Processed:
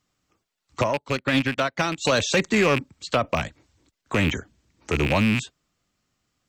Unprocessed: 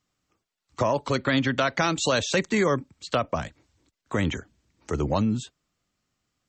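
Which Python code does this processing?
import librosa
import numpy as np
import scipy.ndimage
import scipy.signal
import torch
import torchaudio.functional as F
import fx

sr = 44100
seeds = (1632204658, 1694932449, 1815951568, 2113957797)

p1 = fx.rattle_buzz(x, sr, strikes_db=-29.0, level_db=-16.0)
p2 = np.clip(p1, -10.0 ** (-20.0 / 20.0), 10.0 ** (-20.0 / 20.0))
p3 = p1 + (p2 * librosa.db_to_amplitude(-4.0))
p4 = fx.upward_expand(p3, sr, threshold_db=-34.0, expansion=2.5, at=(0.81, 2.05))
y = p4 * librosa.db_to_amplitude(-1.0)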